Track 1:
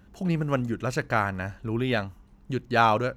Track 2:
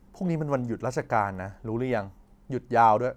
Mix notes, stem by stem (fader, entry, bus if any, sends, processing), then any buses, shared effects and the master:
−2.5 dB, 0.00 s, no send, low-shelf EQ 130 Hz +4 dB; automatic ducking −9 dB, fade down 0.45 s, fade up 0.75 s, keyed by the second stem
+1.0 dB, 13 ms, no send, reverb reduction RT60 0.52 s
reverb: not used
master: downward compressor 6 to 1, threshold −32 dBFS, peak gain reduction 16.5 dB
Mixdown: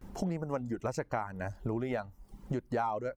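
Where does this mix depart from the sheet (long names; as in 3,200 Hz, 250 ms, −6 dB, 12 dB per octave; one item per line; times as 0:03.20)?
stem 1 −2.5 dB → −14.5 dB
stem 2 +1.0 dB → +8.5 dB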